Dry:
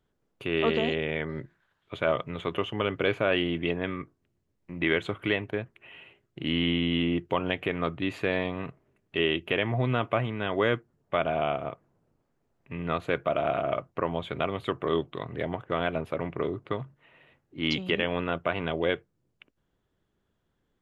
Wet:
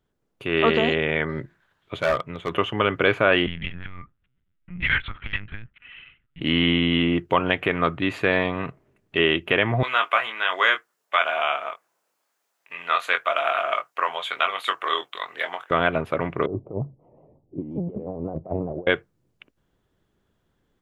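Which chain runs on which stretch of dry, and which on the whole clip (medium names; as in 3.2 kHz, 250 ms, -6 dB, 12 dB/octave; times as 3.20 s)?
2.01–2.50 s: hard clipper -23 dBFS + upward expansion, over -39 dBFS
3.46–6.41 s: elliptic band-stop 220–1200 Hz, stop band 80 dB + LPC vocoder at 8 kHz pitch kept + transformer saturation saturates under 120 Hz
9.83–15.71 s: high-pass 920 Hz + treble shelf 3.4 kHz +10.5 dB + doubling 22 ms -7 dB
16.46–18.87 s: inverse Chebyshev low-pass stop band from 1.5 kHz + compressor with a negative ratio -34 dBFS, ratio -0.5 + vibrato with a chosen wave square 5.6 Hz, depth 100 cents
whole clip: dynamic bell 1.4 kHz, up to +6 dB, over -43 dBFS, Q 1; level rider gain up to 5.5 dB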